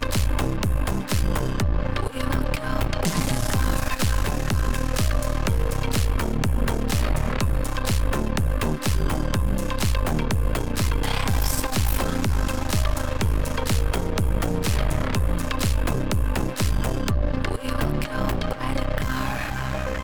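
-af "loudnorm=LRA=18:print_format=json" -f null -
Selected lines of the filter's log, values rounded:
"input_i" : "-25.3",
"input_tp" : "-9.8",
"input_lra" : "2.1",
"input_thresh" : "-35.3",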